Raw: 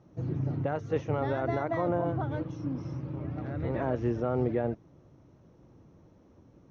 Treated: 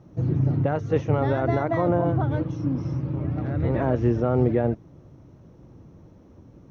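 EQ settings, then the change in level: low shelf 260 Hz +5.5 dB; +5.0 dB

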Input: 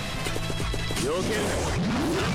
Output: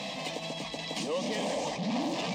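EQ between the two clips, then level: running mean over 4 samples; HPF 240 Hz 12 dB/oct; fixed phaser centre 380 Hz, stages 6; 0.0 dB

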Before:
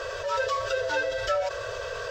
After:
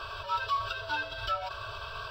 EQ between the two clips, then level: fixed phaser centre 1900 Hz, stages 6; 0.0 dB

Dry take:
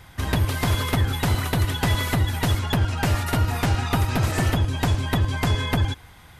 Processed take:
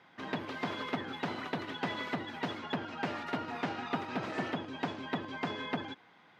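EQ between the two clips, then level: HPF 200 Hz 24 dB/oct; air absorption 220 m; -8.0 dB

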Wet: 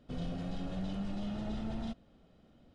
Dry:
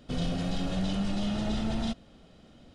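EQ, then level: high shelf 2700 Hz -9.5 dB; -7.5 dB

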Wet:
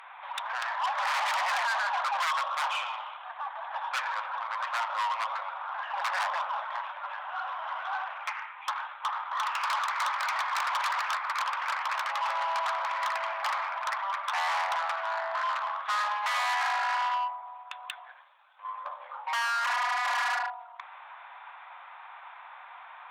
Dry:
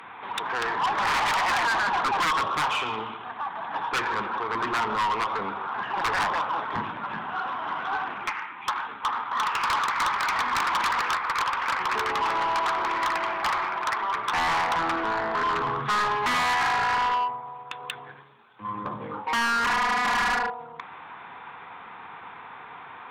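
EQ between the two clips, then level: brick-wall FIR high-pass 530 Hz; -4.5 dB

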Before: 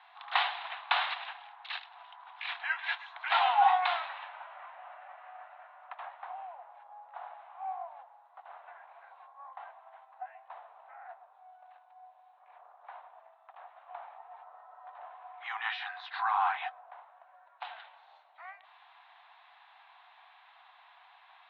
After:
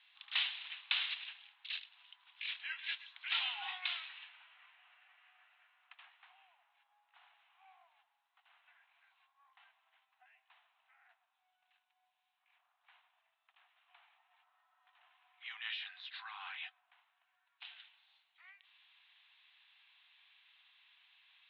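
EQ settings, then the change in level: band-pass 2900 Hz, Q 2; air absorption 65 m; differentiator; +9.0 dB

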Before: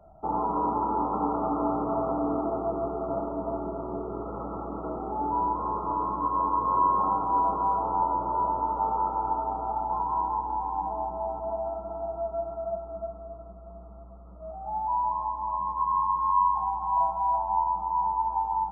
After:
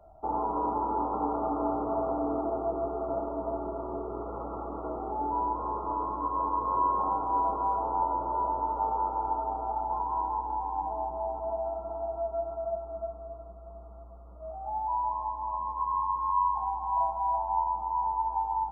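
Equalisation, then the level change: notch 1300 Hz, Q 16; dynamic EQ 1100 Hz, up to -4 dB, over -39 dBFS, Q 2.6; bell 170 Hz -10 dB 1.1 oct; 0.0 dB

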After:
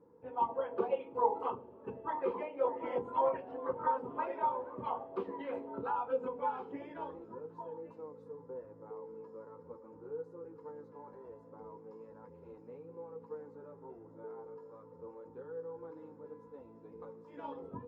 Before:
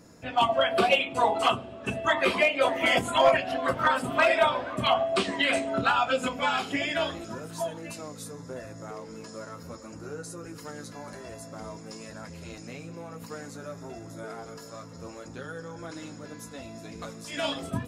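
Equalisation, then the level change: double band-pass 660 Hz, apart 0.9 oct; tilt -4 dB/oct; -3.5 dB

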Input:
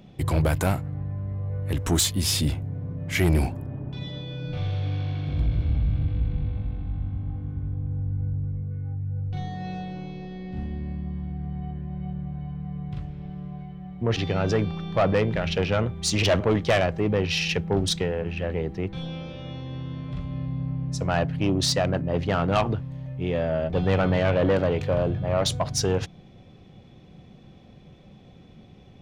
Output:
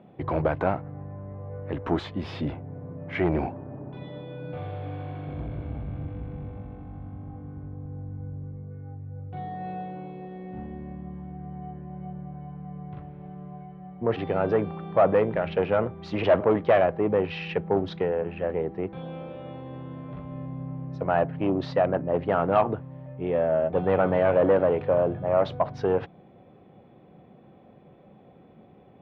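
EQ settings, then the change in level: band-pass 710 Hz, Q 0.69; air absorption 330 m; +4.5 dB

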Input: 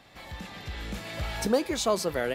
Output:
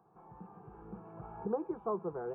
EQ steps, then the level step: Gaussian blur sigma 7 samples; HPF 210 Hz 6 dB/oct; fixed phaser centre 390 Hz, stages 8; -2.5 dB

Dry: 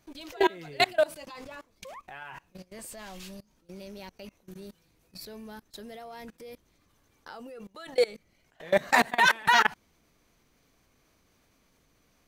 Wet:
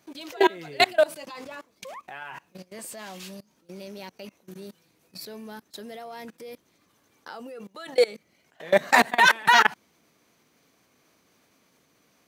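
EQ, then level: HPF 160 Hz 12 dB/oct; +4.0 dB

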